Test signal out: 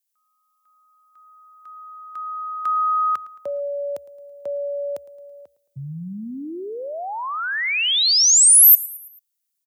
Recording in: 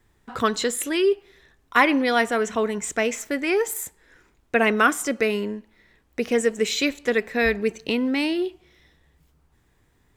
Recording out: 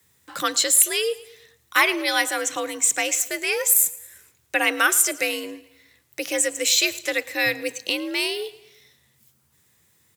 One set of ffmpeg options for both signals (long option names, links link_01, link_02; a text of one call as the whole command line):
ffmpeg -i in.wav -af "afreqshift=65,aecho=1:1:110|220|330|440:0.1|0.049|0.024|0.0118,crystalizer=i=8.5:c=0,volume=-7.5dB" out.wav